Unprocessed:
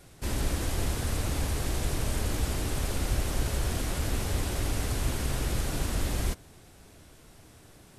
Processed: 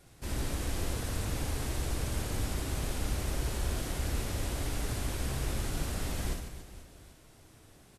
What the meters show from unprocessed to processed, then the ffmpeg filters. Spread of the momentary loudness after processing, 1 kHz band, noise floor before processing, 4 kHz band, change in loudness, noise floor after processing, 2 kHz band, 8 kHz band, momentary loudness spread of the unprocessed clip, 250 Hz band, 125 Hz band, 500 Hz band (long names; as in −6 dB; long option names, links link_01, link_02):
4 LU, −4.0 dB, −54 dBFS, −4.0 dB, −4.0 dB, −58 dBFS, −4.0 dB, −4.0 dB, 1 LU, −3.5 dB, −4.0 dB, −4.0 dB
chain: -af "aecho=1:1:60|150|285|487.5|791.2:0.631|0.398|0.251|0.158|0.1,volume=-6dB"